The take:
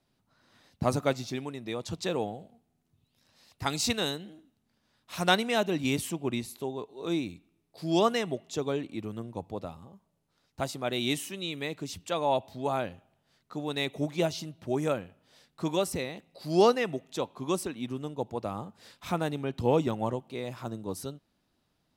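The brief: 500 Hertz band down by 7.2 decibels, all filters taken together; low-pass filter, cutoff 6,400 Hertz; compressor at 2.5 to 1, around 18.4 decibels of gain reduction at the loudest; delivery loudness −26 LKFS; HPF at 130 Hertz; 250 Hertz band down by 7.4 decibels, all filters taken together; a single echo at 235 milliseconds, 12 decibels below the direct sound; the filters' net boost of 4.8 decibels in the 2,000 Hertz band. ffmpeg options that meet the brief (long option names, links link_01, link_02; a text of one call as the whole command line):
ffmpeg -i in.wav -af "highpass=130,lowpass=6400,equalizer=frequency=250:width_type=o:gain=-7,equalizer=frequency=500:width_type=o:gain=-7.5,equalizer=frequency=2000:width_type=o:gain=7,acompressor=threshold=-46dB:ratio=2.5,aecho=1:1:235:0.251,volume=19.5dB" out.wav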